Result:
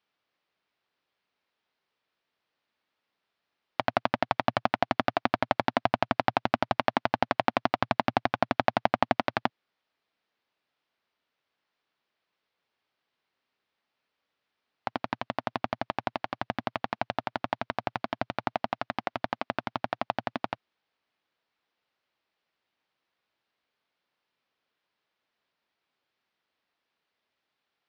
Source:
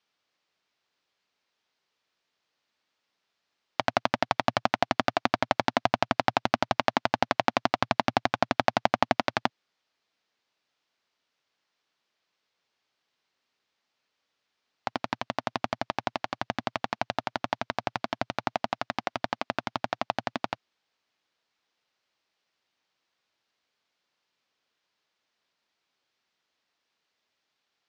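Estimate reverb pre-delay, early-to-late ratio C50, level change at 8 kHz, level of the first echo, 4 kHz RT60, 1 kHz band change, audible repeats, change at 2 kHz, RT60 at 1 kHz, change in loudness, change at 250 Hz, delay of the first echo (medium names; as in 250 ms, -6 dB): no reverb, no reverb, under -10 dB, no echo, no reverb, -0.5 dB, no echo, -1.5 dB, no reverb, -1.0 dB, 0.0 dB, no echo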